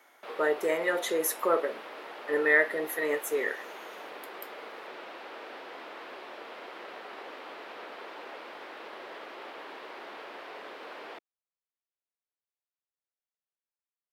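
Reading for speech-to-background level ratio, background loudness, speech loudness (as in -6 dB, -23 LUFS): 15.5 dB, -43.5 LUFS, -28.0 LUFS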